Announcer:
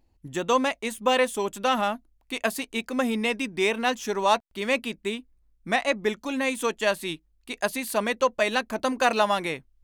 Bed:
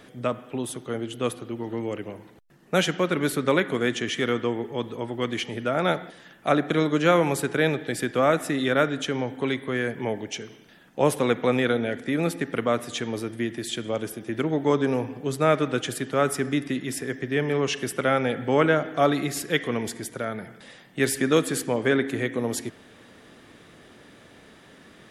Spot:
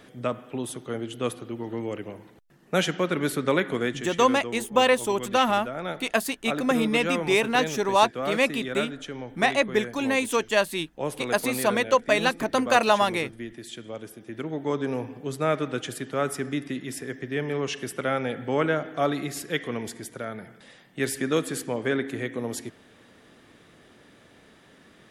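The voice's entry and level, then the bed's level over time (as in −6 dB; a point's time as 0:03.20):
3.70 s, +2.0 dB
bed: 0:03.82 −1.5 dB
0:04.07 −9 dB
0:14.10 −9 dB
0:15.01 −4 dB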